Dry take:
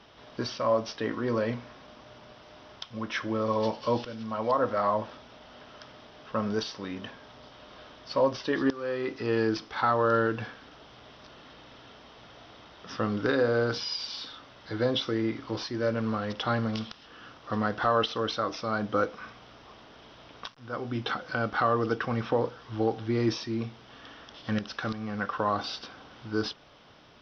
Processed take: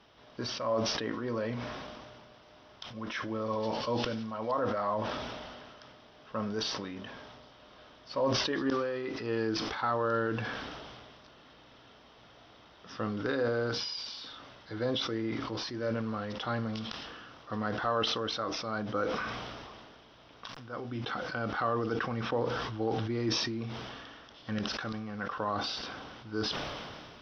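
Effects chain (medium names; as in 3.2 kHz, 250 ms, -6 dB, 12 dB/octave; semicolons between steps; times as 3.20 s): decay stretcher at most 27 dB/s; trim -6 dB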